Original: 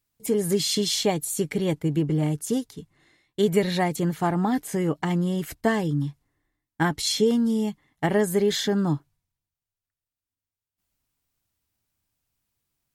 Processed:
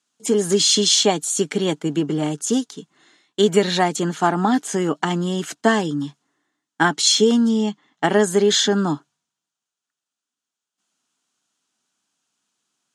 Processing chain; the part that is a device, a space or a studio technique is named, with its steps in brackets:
0:07.49–0:08.04: low-pass filter 6,100 Hz 12 dB per octave
television speaker (loudspeaker in its box 210–8,900 Hz, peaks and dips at 320 Hz −3 dB, 520 Hz −6 dB, 1,400 Hz +5 dB, 2,100 Hz −6 dB, 3,200 Hz +4 dB, 6,600 Hz +6 dB)
level +7.5 dB

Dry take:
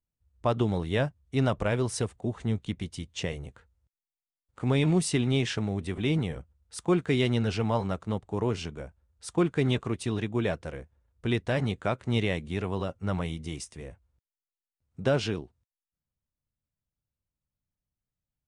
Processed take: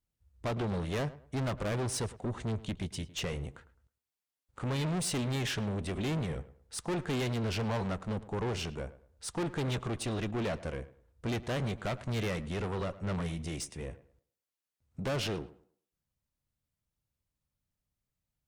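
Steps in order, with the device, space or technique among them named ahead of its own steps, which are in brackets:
rockabilly slapback (tube saturation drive 33 dB, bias 0.25; tape delay 106 ms, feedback 30%, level −15 dB, low-pass 2,100 Hz)
level +3 dB

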